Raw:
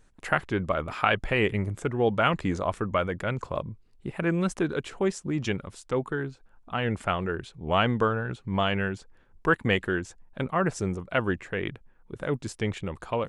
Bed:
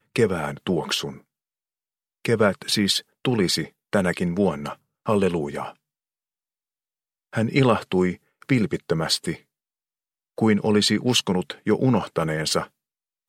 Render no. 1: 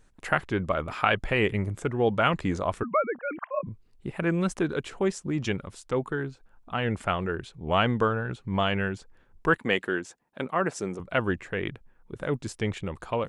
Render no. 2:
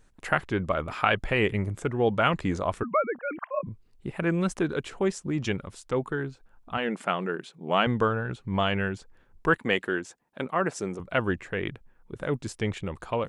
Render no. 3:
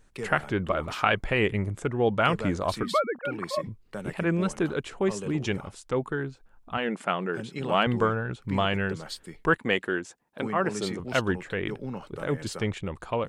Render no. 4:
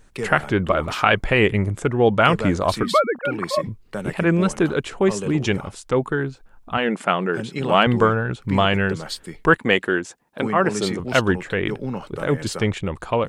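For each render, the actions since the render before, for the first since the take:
2.83–3.67 s: formants replaced by sine waves; 9.58–11.00 s: high-pass 220 Hz
6.77–7.87 s: brick-wall FIR high-pass 150 Hz
add bed -16 dB
trim +7.5 dB; peak limiter -1 dBFS, peak gain reduction 2 dB

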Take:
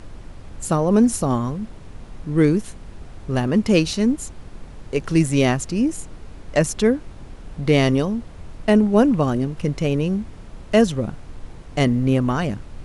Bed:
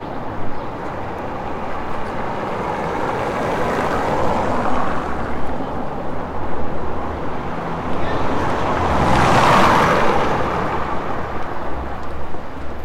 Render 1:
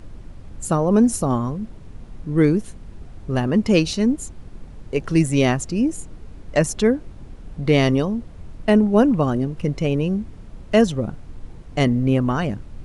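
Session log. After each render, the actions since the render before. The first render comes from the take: noise reduction 6 dB, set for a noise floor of -40 dBFS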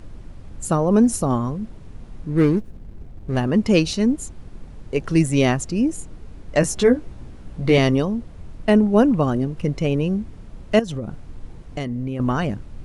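2.30–3.37 s: median filter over 41 samples; 6.61–7.78 s: doubling 16 ms -3.5 dB; 10.79–12.20 s: compression, threshold -23 dBFS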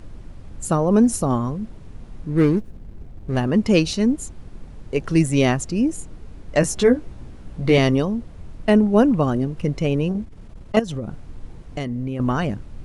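10.09–10.77 s: transformer saturation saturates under 510 Hz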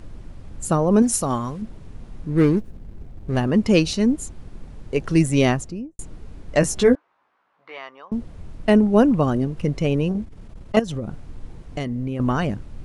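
1.02–1.62 s: tilt shelf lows -5 dB, about 880 Hz; 5.46–5.99 s: studio fade out; 6.95–8.12 s: ladder band-pass 1.3 kHz, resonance 40%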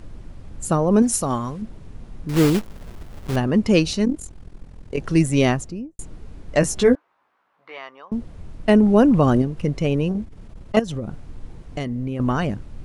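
2.29–3.36 s: block-companded coder 3-bit; 4.05–4.98 s: AM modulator 42 Hz, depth 65%; 8.69–9.42 s: level flattener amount 50%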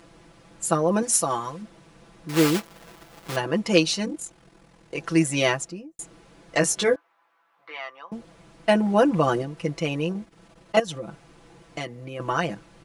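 high-pass 620 Hz 6 dB/octave; comb 6 ms, depth 84%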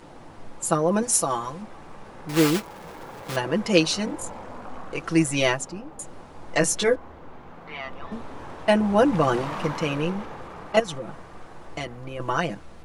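add bed -20 dB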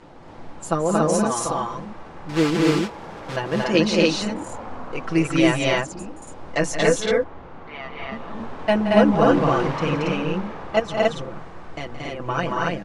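distance through air 78 m; loudspeakers at several distances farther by 59 m -11 dB, 78 m -2 dB, 96 m -1 dB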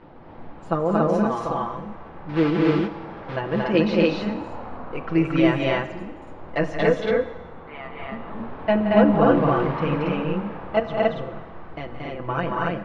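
distance through air 330 m; Schroeder reverb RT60 1.3 s, combs from 27 ms, DRR 12 dB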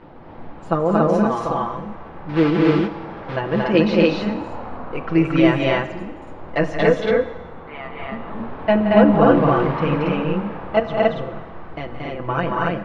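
trim +3.5 dB; peak limiter -1 dBFS, peak gain reduction 1 dB

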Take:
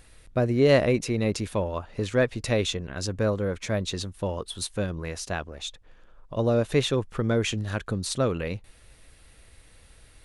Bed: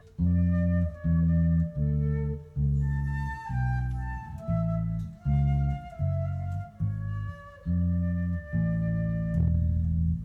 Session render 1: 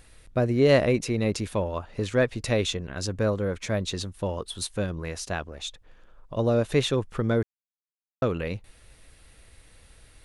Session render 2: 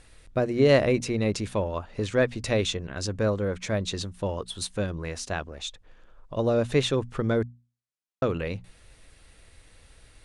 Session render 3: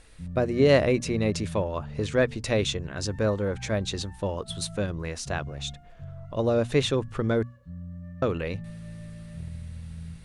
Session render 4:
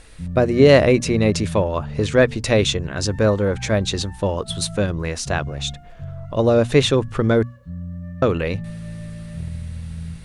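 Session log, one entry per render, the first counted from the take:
7.43–8.22 s: mute
low-pass 9.9 kHz 24 dB/octave; hum notches 60/120/180/240 Hz
add bed -13 dB
trim +8 dB; peak limiter -2 dBFS, peak gain reduction 1 dB

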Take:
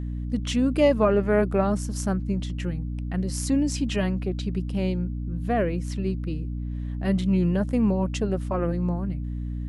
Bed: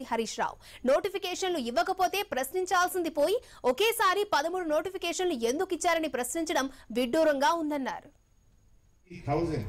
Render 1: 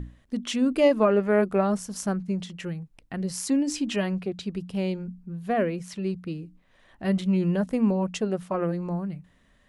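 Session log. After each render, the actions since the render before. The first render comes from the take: hum notches 60/120/180/240/300 Hz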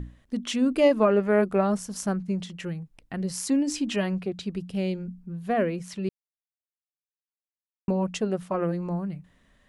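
4.62–5.09 s: peaking EQ 1 kHz -8.5 dB 0.5 oct; 6.09–7.88 s: mute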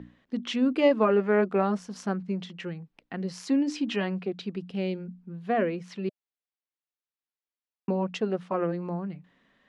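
three-band isolator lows -20 dB, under 160 Hz, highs -23 dB, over 5.1 kHz; band-stop 610 Hz, Q 12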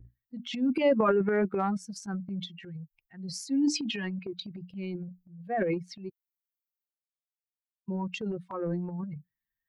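expander on every frequency bin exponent 2; transient shaper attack -4 dB, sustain +12 dB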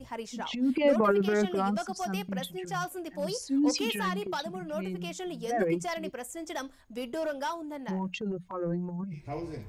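add bed -8 dB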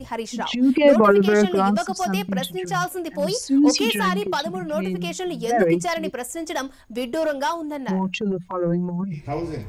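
trim +9.5 dB

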